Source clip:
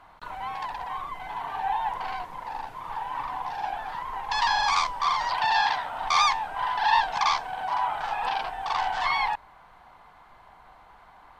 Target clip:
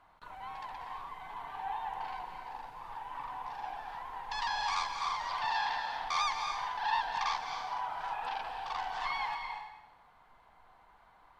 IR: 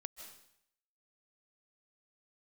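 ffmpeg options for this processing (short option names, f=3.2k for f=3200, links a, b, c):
-filter_complex "[1:a]atrim=start_sample=2205,asetrate=32193,aresample=44100[a];[0:a][a]afir=irnorm=-1:irlink=0,volume=-7dB"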